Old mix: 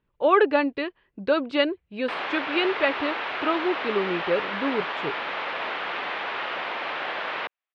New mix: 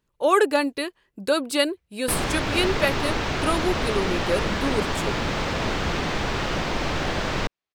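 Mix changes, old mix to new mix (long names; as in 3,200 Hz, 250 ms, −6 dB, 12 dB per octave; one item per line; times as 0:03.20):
background: remove high-pass filter 700 Hz 12 dB per octave
master: remove low-pass filter 3,200 Hz 24 dB per octave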